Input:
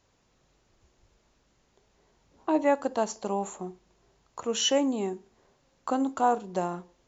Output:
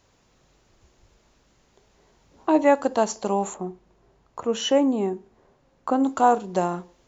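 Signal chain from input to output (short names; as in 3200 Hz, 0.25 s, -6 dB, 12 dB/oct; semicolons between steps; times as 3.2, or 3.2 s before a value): 3.54–6.04 high shelf 2500 Hz -12 dB; gain +6 dB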